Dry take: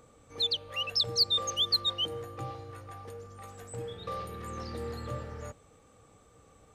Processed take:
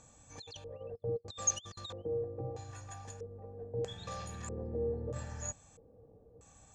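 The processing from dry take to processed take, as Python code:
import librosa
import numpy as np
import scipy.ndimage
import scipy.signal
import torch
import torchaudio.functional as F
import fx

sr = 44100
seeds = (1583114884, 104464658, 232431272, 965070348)

y = x + 0.6 * np.pad(x, (int(1.2 * sr / 1000.0), 0))[:len(x)]
y = fx.over_compress(y, sr, threshold_db=-34.0, ratio=-0.5)
y = fx.filter_lfo_lowpass(y, sr, shape='square', hz=0.78, low_hz=450.0, high_hz=6900.0, q=7.1)
y = y * librosa.db_to_amplitude(-7.5)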